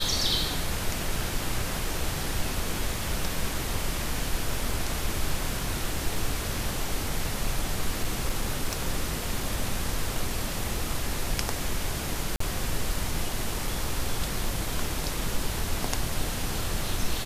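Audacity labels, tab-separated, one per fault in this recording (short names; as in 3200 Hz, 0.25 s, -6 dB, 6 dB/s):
8.030000	8.820000	clipped -19.5 dBFS
12.360000	12.400000	gap 44 ms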